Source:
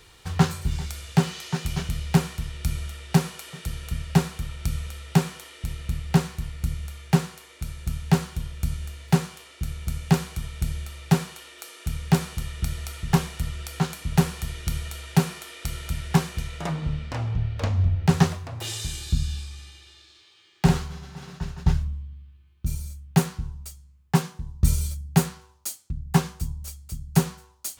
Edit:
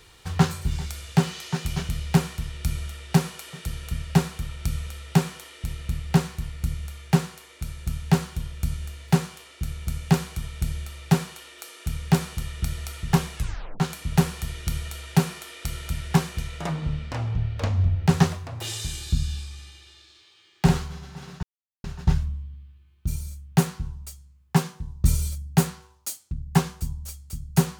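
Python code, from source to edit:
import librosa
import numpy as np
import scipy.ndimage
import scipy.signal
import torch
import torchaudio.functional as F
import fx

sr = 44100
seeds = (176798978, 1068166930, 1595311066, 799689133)

y = fx.edit(x, sr, fx.tape_stop(start_s=13.36, length_s=0.44),
    fx.insert_silence(at_s=21.43, length_s=0.41), tone=tone)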